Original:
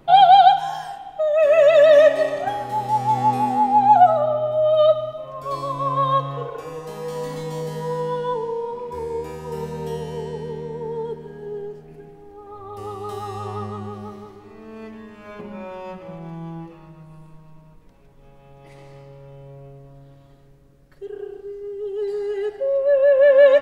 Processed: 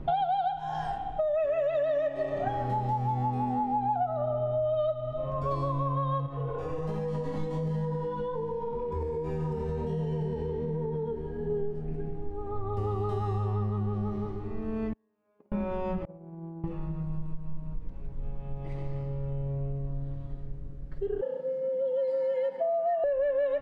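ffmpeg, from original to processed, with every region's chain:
ffmpeg -i in.wav -filter_complex "[0:a]asettb=1/sr,asplit=3[link_01][link_02][link_03];[link_01]atrim=end=6.264[link_04];[link_02]atrim=start=6.26:end=11.5,asetpts=PTS-STARTPTS,afade=type=in:duration=0.004:curve=qsin,afade=type=out:start_time=5.236:duration=0.004:curve=qsin,flanger=delay=18:depth=5.3:speed=1.3,acompressor=threshold=-32dB:ratio=6:attack=3.2:release=140:knee=1:detection=peak[link_05];[link_03]atrim=start=11.496[link_06];[link_04][link_05]acrossfade=duration=0.004:curve1=hsin:curve2=qsin[link_07];[link_07][link_06]acrossfade=duration=0.004:curve1=qsin:curve2=hsin,asettb=1/sr,asplit=3[link_08][link_09][link_10];[link_08]atrim=end=14.934[link_11];[link_09]atrim=start=14.93:end=15.52,asetpts=PTS-STARTPTS,afade=type=in:duration=0.004:curve=qsin,afade=type=out:start_time=0.586:duration=0.004:curve=qsin,agate=range=-31dB:threshold=-31dB:ratio=16:release=100:detection=peak,bandpass=frequency=450:width_type=q:width=0.69,aemphasis=mode=production:type=riaa[link_12];[link_10]atrim=start=15.516[link_13];[link_11][link_12]acrossfade=duration=0.004:curve1=hsin:curve2=qsin[link_14];[link_14][link_13]acrossfade=duration=0.004:curve1=qsin:curve2=hsin,asettb=1/sr,asplit=3[link_15][link_16][link_17];[link_15]atrim=end=16.054[link_18];[link_16]atrim=start=16.05:end=16.64,asetpts=PTS-STARTPTS,afade=type=in:duration=0.004:curve=qsin,afade=type=out:start_time=0.586:duration=0.004:curve=qsin,agate=range=-33dB:threshold=-27dB:ratio=3:release=100:detection=peak,bandpass=frequency=450:width_type=q:width=1.2[link_19];[link_17]atrim=start=16.636[link_20];[link_18][link_19]acrossfade=duration=0.004:curve1=hsin:curve2=qsin[link_21];[link_21][link_20]acrossfade=duration=0.004:curve1=qsin:curve2=hsin,asettb=1/sr,asplit=3[link_22][link_23][link_24];[link_22]atrim=end=21.214[link_25];[link_23]atrim=start=21.21:end=23.04,asetpts=PTS-STARTPTS,afade=type=in:duration=0.004:curve=qsin,afade=type=out:start_time=1.826:duration=0.004:curve=qsin,highpass=67,afreqshift=120[link_26];[link_24]atrim=start=23.036[link_27];[link_25][link_26]acrossfade=duration=0.004:curve1=hsin:curve2=qsin[link_28];[link_28][link_27]acrossfade=duration=0.004:curve1=qsin:curve2=hsin,aemphasis=mode=reproduction:type=riaa,acompressor=threshold=-26dB:ratio=10" out.wav

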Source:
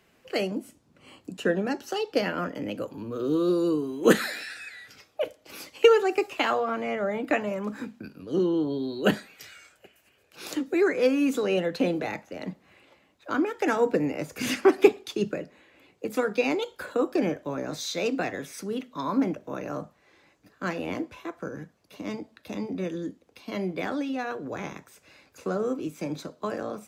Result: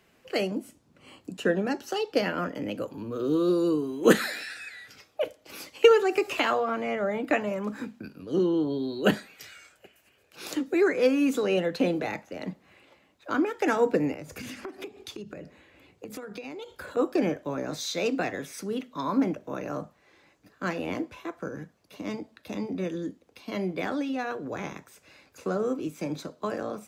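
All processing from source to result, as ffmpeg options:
ffmpeg -i in.wav -filter_complex "[0:a]asettb=1/sr,asplit=3[link_01][link_02][link_03];[link_01]atrim=end=5.914[link_04];[link_02]atrim=start=5.91:end=6.54,asetpts=PTS-STARTPTS,afade=type=in:duration=0.004:curve=qsin,afade=type=out:start_time=0.626:duration=0.004:curve=qsin,bandreject=frequency=800:width=15,acompressor=mode=upward:threshold=-22dB:ratio=2.5:attack=3.2:release=140:knee=2.83:detection=peak[link_05];[link_03]atrim=start=6.536[link_06];[link_04][link_05]acrossfade=duration=0.004:curve1=hsin:curve2=qsin[link_07];[link_07][link_06]acrossfade=duration=0.004:curve1=qsin:curve2=hsin,asettb=1/sr,asplit=3[link_08][link_09][link_10];[link_08]atrim=end=14.134[link_11];[link_09]atrim=start=14.13:end=16.97,asetpts=PTS-STARTPTS,afade=type=in:duration=0.004:curve=qsin,afade=type=out:start_time=2.836:duration=0.004:curve=qsin,equalizer=frequency=74:width_type=o:width=2:gain=9.5,acompressor=threshold=-35dB:ratio=16:attack=3.2:release=140:knee=1:detection=peak[link_12];[link_10]atrim=start=16.966[link_13];[link_11][link_12]acrossfade=duration=0.004:curve1=hsin:curve2=qsin[link_14];[link_14][link_13]acrossfade=duration=0.004:curve1=qsin:curve2=hsin" out.wav

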